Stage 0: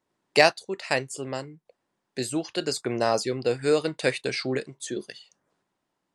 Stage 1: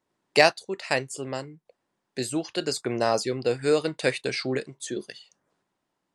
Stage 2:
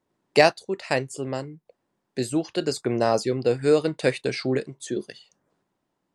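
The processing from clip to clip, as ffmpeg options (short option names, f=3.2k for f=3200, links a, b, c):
-af anull
-af "tiltshelf=f=760:g=3.5,volume=1.5dB"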